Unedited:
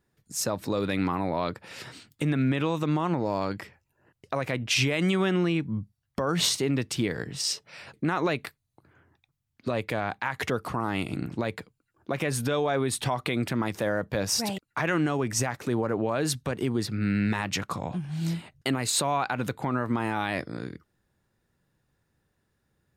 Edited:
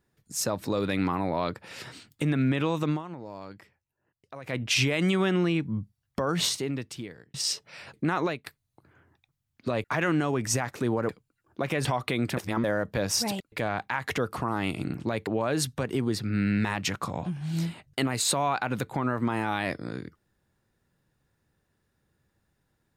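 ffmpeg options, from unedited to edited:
-filter_complex "[0:a]asplit=12[a][b][c][d][e][f][g][h][i][j][k][l];[a]atrim=end=3.03,asetpts=PTS-STARTPTS,afade=t=out:st=2.89:d=0.14:silence=0.223872[m];[b]atrim=start=3.03:end=4.43,asetpts=PTS-STARTPTS,volume=-13dB[n];[c]atrim=start=4.43:end=7.34,asetpts=PTS-STARTPTS,afade=t=in:d=0.14:silence=0.223872,afade=t=out:st=1.78:d=1.13[o];[d]atrim=start=7.34:end=8.46,asetpts=PTS-STARTPTS,afade=t=in:d=0.004:c=hsin,afade=t=out:st=0.87:d=0.25:silence=0.0707946[p];[e]atrim=start=8.46:end=9.842,asetpts=PTS-STARTPTS,afade=t=in:d=0.004:c=hsin:silence=0.0707946[q];[f]atrim=start=14.698:end=15.952[r];[g]atrim=start=11.588:end=12.352[s];[h]atrim=start=13.028:end=13.552[t];[i]atrim=start=13.548:end=13.822,asetpts=PTS-STARTPTS,areverse[u];[j]atrim=start=13.818:end=14.702[v];[k]atrim=start=9.838:end=11.592[w];[l]atrim=start=15.948[x];[m][n][o][p][q]concat=n=5:v=0:a=1[y];[y][r]acrossfade=d=0.004:c1=hsin:c2=hsin[z];[z][s]acrossfade=d=0.004:c1=hsin:c2=hsin[aa];[aa][t]acrossfade=d=0.004:c1=hsin:c2=hsin[ab];[ab][u]acrossfade=d=0.004:c1=hsin:c2=hsin[ac];[ac][v]acrossfade=d=0.004:c1=hsin:c2=hsin[ad];[ad][w]acrossfade=d=0.004:c1=hsin:c2=hsin[ae];[ae][x]acrossfade=d=0.004:c1=hsin:c2=hsin"

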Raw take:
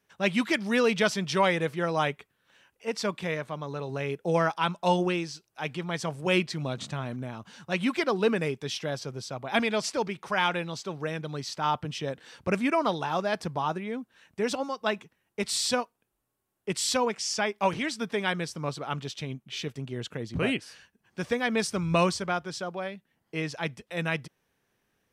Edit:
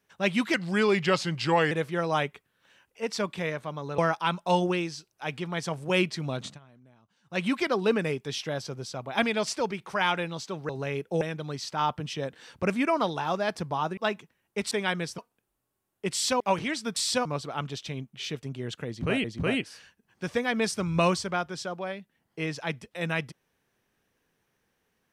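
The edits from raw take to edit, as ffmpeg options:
-filter_complex "[0:a]asplit=15[a][b][c][d][e][f][g][h][i][j][k][l][m][n][o];[a]atrim=end=0.544[p];[b]atrim=start=0.54:end=1.56,asetpts=PTS-STARTPTS,asetrate=38367,aresample=44100,atrim=end_sample=51703,asetpts=PTS-STARTPTS[q];[c]atrim=start=1.556:end=3.832[r];[d]atrim=start=4.348:end=6.96,asetpts=PTS-STARTPTS,afade=t=out:st=2.462:d=0.15:silence=0.0841395[s];[e]atrim=start=6.96:end=7.61,asetpts=PTS-STARTPTS,volume=-21.5dB[t];[f]atrim=start=7.61:end=11.062,asetpts=PTS-STARTPTS,afade=t=in:d=0.15:silence=0.0841395[u];[g]atrim=start=3.828:end=4.352[v];[h]atrim=start=11.058:end=13.822[w];[i]atrim=start=14.788:end=15.532[x];[j]atrim=start=18.108:end=18.582[y];[k]atrim=start=15.818:end=17.042[z];[l]atrim=start=17.548:end=18.112[aa];[m]atrim=start=15.528:end=15.822[ab];[n]atrim=start=18.578:end=20.572[ac];[o]atrim=start=20.198[ad];[p][q]acrossfade=d=0.004:c1=hsin:c2=hsin[ae];[ae][r]acrossfade=d=0.004:c1=hsin:c2=hsin[af];[s][t][u]concat=n=3:v=0:a=1[ag];[af][ag]acrossfade=d=0.004:c1=hsin:c2=hsin[ah];[ah][v]acrossfade=d=0.004:c1=hsin:c2=hsin[ai];[ai][w]acrossfade=d=0.004:c1=hsin:c2=hsin[aj];[aj][x]acrossfade=d=0.004:c1=hsin:c2=hsin[ak];[ak][y]acrossfade=d=0.004:c1=hsin:c2=hsin[al];[al][z]acrossfade=d=0.004:c1=hsin:c2=hsin[am];[am][aa]acrossfade=d=0.004:c1=hsin:c2=hsin[an];[an][ab]acrossfade=d=0.004:c1=hsin:c2=hsin[ao];[ao][ac]acrossfade=d=0.004:c1=hsin:c2=hsin[ap];[ap][ad]acrossfade=d=0.004:c1=hsin:c2=hsin"

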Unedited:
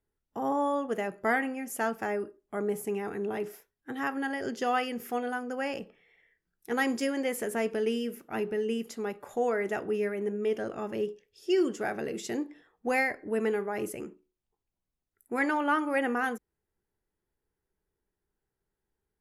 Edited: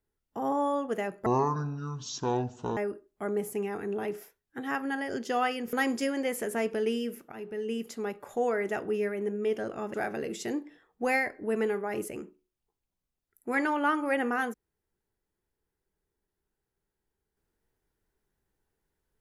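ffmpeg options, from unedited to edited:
-filter_complex "[0:a]asplit=6[a][b][c][d][e][f];[a]atrim=end=1.264[g];[b]atrim=start=1.26:end=2.09,asetpts=PTS-STARTPTS,asetrate=24255,aresample=44100[h];[c]atrim=start=2.086:end=5.052[i];[d]atrim=start=6.728:end=8.32,asetpts=PTS-STARTPTS,afade=t=out:st=1.588:d=0.004:c=hsin:silence=0.211349[j];[e]atrim=start=8.32:end=10.942,asetpts=PTS-STARTPTS,afade=t=in:d=0.54:silence=0.211349[k];[f]atrim=start=11.778[l];[g][h]acrossfade=d=0.004:c1=hsin:c2=hsin[m];[m][i]acrossfade=d=0.004:c1=hsin:c2=hsin[n];[j][k]concat=n=2:v=0:a=1[o];[n][o]acrossfade=d=0.004:c1=hsin:c2=hsin[p];[p][l]acrossfade=d=0.004:c1=hsin:c2=hsin"

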